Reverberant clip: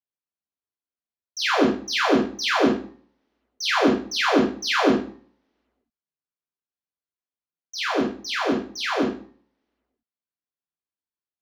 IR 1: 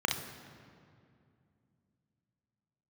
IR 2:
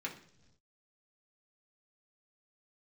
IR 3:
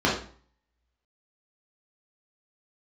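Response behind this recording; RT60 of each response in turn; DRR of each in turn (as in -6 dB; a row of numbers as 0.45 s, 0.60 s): 3; 2.4 s, no single decay rate, 0.45 s; 2.0 dB, -2.5 dB, -6.0 dB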